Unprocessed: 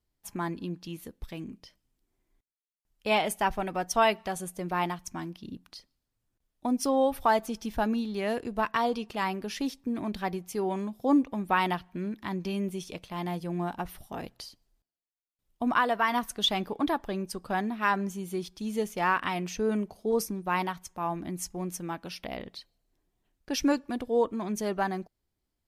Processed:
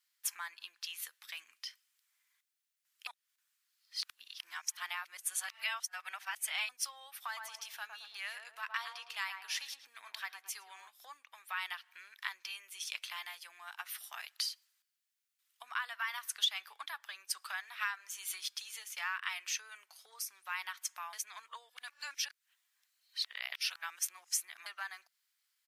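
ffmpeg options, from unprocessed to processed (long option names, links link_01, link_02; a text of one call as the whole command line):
ffmpeg -i in.wav -filter_complex "[0:a]asplit=3[link_01][link_02][link_03];[link_01]afade=type=out:start_time=7.26:duration=0.02[link_04];[link_02]asplit=2[link_05][link_06];[link_06]adelay=110,lowpass=frequency=920:poles=1,volume=-3dB,asplit=2[link_07][link_08];[link_08]adelay=110,lowpass=frequency=920:poles=1,volume=0.42,asplit=2[link_09][link_10];[link_10]adelay=110,lowpass=frequency=920:poles=1,volume=0.42,asplit=2[link_11][link_12];[link_12]adelay=110,lowpass=frequency=920:poles=1,volume=0.42,asplit=2[link_13][link_14];[link_14]adelay=110,lowpass=frequency=920:poles=1,volume=0.42[link_15];[link_05][link_07][link_09][link_11][link_13][link_15]amix=inputs=6:normalize=0,afade=type=in:start_time=7.26:duration=0.02,afade=type=out:start_time=10.89:duration=0.02[link_16];[link_03]afade=type=in:start_time=10.89:duration=0.02[link_17];[link_04][link_16][link_17]amix=inputs=3:normalize=0,asettb=1/sr,asplit=3[link_18][link_19][link_20];[link_18]atrim=end=17.334[link_21];[link_19]atrim=start=17.33:end=18.45,asetpts=PTS-STARTPTS,afade=type=in:duration=0.004:curve=qsin,afade=type=out:start_time=1.116:duration=0.004:curve=qsin,highpass=390[link_22];[link_20]atrim=start=18.446[link_23];[link_21][link_22]acrossfade=duration=0.004:curve1=hsin:curve2=qsin[link_24];[link_24][link_23]acrossfade=duration=0.004:curve1=qsin:curve2=hsin,asplit=5[link_25][link_26][link_27][link_28][link_29];[link_25]atrim=end=3.072[link_30];[link_26]atrim=start=3.068:end=6.692,asetpts=PTS-STARTPTS,areverse[link_31];[link_27]atrim=start=6.688:end=21.132[link_32];[link_28]atrim=start=21.128:end=24.662,asetpts=PTS-STARTPTS,areverse[link_33];[link_29]atrim=start=24.658[link_34];[link_30][link_31]acrossfade=duration=0.004:curve1=hsin:curve2=hsin[link_35];[link_35][link_32]acrossfade=duration=0.004:curve1=hsin:curve2=hsin[link_36];[link_36][link_33]acrossfade=duration=0.004:curve1=hsin:curve2=hsin[link_37];[link_37][link_34]acrossfade=duration=0.004:curve1=hsin:curve2=hsin,acompressor=threshold=-38dB:ratio=6,highpass=frequency=1400:width=0.5412,highpass=frequency=1400:width=1.3066,volume=9dB" out.wav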